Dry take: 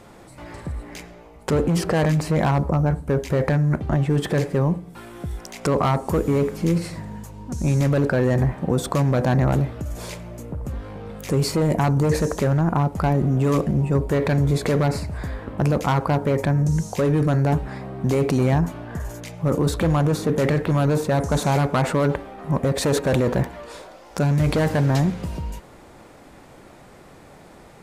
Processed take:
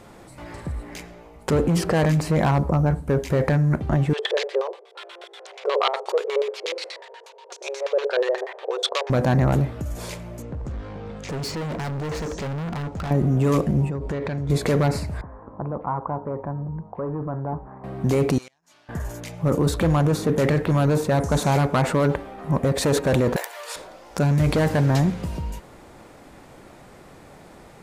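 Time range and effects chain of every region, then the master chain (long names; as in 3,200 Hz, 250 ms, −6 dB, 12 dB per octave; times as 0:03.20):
0:04.13–0:09.10: spectral tilt +3.5 dB per octave + auto-filter low-pass square 8.3 Hz 520–3,600 Hz + linear-phase brick-wall high-pass 360 Hz
0:10.42–0:13.11: low-pass filter 7,000 Hz 24 dB per octave + hard clipping −27 dBFS
0:13.89–0:14.50: low-pass filter 5,400 Hz + downward compressor 12 to 1, threshold −23 dBFS
0:15.21–0:17.84: transistor ladder low-pass 1,200 Hz, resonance 50% + parametric band 66 Hz −3.5 dB 1.7 octaves
0:18.38–0:18.89: resonant band-pass 5,300 Hz, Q 1.4 + gate with flip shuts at −32 dBFS, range −27 dB
0:23.36–0:23.76: Butterworth high-pass 430 Hz + spectral tilt +4 dB per octave + multiband upward and downward compressor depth 40%
whole clip: no processing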